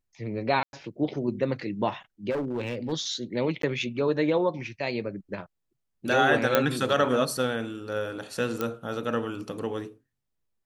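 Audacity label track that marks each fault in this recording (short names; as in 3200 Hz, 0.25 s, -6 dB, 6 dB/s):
0.630000	0.730000	gap 0.101 s
2.300000	2.930000	clipped -25.5 dBFS
3.620000	3.630000	gap 13 ms
6.550000	6.550000	pop -6 dBFS
8.610000	8.610000	pop -14 dBFS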